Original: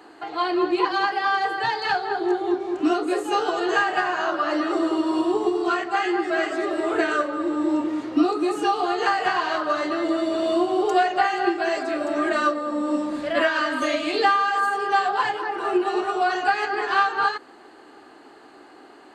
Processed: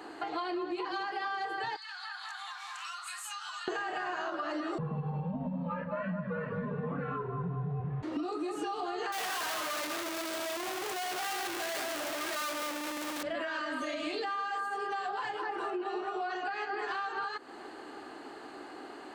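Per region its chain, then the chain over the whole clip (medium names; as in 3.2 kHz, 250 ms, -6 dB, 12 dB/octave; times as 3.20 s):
1.76–3.68 s: steep high-pass 990 Hz 48 dB/octave + treble shelf 3.9 kHz +9 dB + compression 12:1, threshold -39 dBFS
4.78–8.03 s: Bessel low-pass 1.6 kHz, order 4 + frequency shift -170 Hz
9.12–13.23 s: one-bit comparator + high-pass 610 Hz 6 dB/octave
15.70–16.79 s: high-pass 120 Hz 6 dB/octave + distance through air 80 m
whole clip: peak limiter -16.5 dBFS; compression, threshold -35 dBFS; trim +1.5 dB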